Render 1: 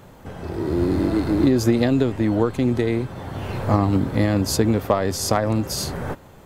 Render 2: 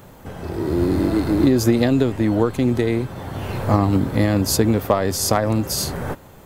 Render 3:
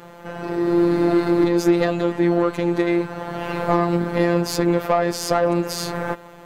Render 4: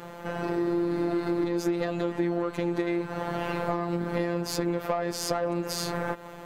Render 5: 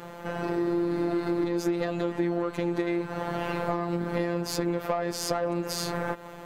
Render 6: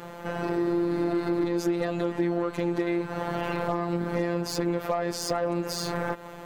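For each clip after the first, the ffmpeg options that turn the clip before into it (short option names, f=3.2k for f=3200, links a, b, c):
-af "highshelf=f=11k:g=9.5,volume=1.5dB"
-filter_complex "[0:a]equalizer=f=920:t=o:w=0.77:g=-2,asplit=2[a][b];[b]highpass=f=720:p=1,volume=17dB,asoftclip=type=tanh:threshold=-5dB[c];[a][c]amix=inputs=2:normalize=0,lowpass=f=1.4k:p=1,volume=-6dB,afftfilt=real='hypot(re,im)*cos(PI*b)':imag='0':win_size=1024:overlap=0.75,volume=1.5dB"
-af "acompressor=threshold=-24dB:ratio=6"
-af anull
-af "volume=16.5dB,asoftclip=hard,volume=-16.5dB,volume=1dB"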